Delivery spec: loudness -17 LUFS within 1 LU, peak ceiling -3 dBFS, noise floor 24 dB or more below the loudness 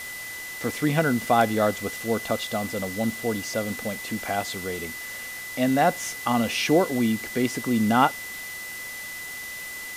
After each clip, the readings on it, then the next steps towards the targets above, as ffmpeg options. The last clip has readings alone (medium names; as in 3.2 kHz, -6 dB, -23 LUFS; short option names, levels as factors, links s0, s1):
steady tone 2 kHz; tone level -35 dBFS; noise floor -36 dBFS; noise floor target -50 dBFS; loudness -26.0 LUFS; peak level -7.0 dBFS; loudness target -17.0 LUFS
-> -af "bandreject=f=2000:w=30"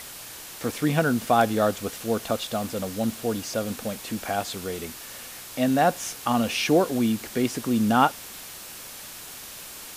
steady tone not found; noise floor -41 dBFS; noise floor target -50 dBFS
-> -af "afftdn=nr=9:nf=-41"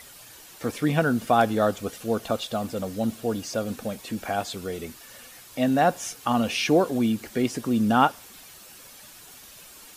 noise floor -47 dBFS; noise floor target -50 dBFS
-> -af "afftdn=nr=6:nf=-47"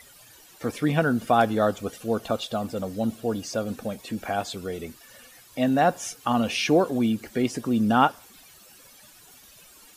noise floor -52 dBFS; loudness -25.5 LUFS; peak level -7.0 dBFS; loudness target -17.0 LUFS
-> -af "volume=2.66,alimiter=limit=0.708:level=0:latency=1"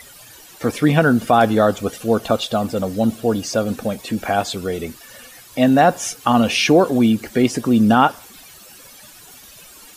loudness -17.5 LUFS; peak level -3.0 dBFS; noise floor -43 dBFS